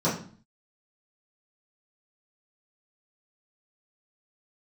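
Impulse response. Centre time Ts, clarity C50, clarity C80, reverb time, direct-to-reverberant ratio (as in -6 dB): 31 ms, 7.0 dB, 11.5 dB, 0.45 s, -11.0 dB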